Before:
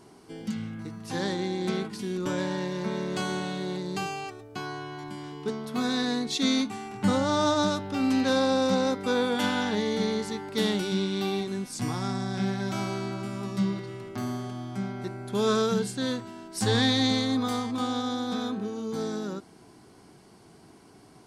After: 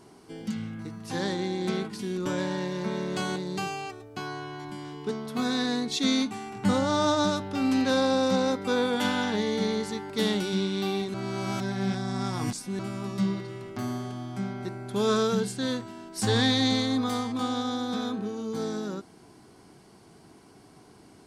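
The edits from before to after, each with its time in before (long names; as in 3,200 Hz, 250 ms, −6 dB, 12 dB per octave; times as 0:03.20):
0:03.36–0:03.75: remove
0:11.53–0:13.18: reverse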